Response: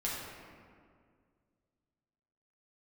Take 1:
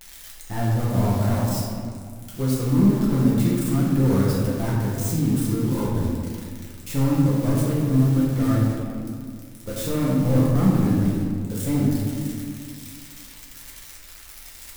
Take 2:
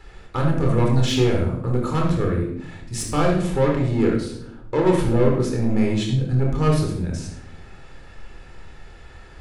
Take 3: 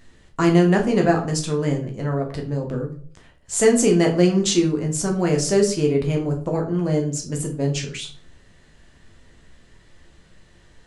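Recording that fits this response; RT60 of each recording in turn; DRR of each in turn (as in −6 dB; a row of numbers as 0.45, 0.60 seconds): 1; 2.1, 0.75, 0.50 seconds; −6.5, −0.5, 1.0 decibels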